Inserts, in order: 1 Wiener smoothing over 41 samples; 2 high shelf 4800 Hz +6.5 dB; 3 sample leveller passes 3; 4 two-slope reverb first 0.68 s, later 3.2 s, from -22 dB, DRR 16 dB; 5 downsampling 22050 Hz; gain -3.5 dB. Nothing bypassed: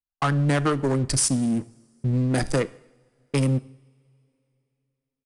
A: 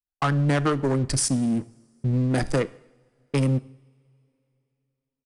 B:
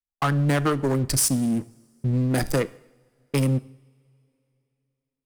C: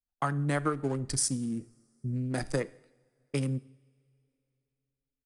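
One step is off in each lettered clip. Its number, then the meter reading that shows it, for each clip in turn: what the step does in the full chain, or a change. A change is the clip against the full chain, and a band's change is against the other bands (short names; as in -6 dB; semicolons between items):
2, 8 kHz band -2.5 dB; 5, crest factor change -1.5 dB; 3, crest factor change +6.0 dB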